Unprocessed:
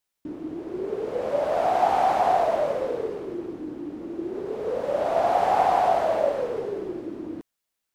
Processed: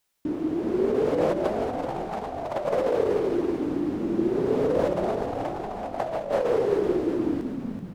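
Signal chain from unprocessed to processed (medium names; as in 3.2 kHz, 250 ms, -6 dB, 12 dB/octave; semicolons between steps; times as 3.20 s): compressor with a negative ratio -28 dBFS, ratio -0.5; on a send: frequency-shifting echo 380 ms, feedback 52%, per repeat -76 Hz, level -6.5 dB; on the sum: trim +2.5 dB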